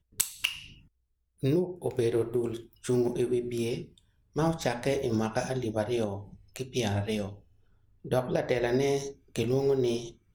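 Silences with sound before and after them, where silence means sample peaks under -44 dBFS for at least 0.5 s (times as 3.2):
0.73–1.43
7.38–8.05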